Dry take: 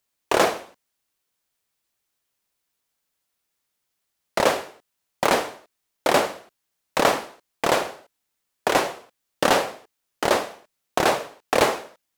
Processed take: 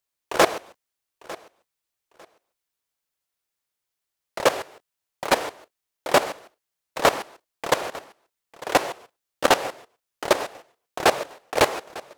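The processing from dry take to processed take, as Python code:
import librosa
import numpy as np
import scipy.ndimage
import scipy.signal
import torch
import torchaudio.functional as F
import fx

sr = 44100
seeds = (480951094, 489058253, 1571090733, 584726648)

y = fx.peak_eq(x, sr, hz=220.0, db=-5.5, octaves=0.64)
y = fx.level_steps(y, sr, step_db=18)
y = 10.0 ** (-12.0 / 20.0) * np.tanh(y / 10.0 ** (-12.0 / 20.0))
y = fx.echo_feedback(y, sr, ms=900, feedback_pct=22, wet_db=-19.0)
y = F.gain(torch.from_numpy(y), 6.0).numpy()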